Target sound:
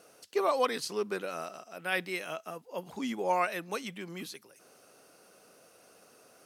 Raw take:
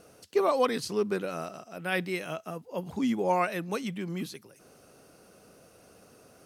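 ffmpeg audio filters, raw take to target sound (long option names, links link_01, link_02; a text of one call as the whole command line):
ffmpeg -i in.wav -af "highpass=frequency=550:poles=1" out.wav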